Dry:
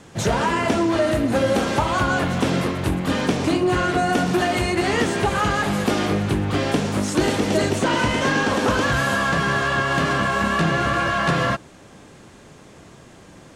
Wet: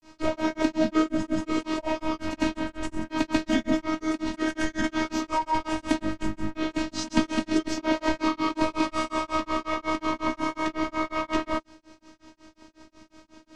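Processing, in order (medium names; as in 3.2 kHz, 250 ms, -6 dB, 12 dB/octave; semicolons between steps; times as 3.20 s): robot voice 316 Hz; formant shift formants -5 st; granulator 186 ms, grains 5.5 per s, spray 100 ms, pitch spread up and down by 0 st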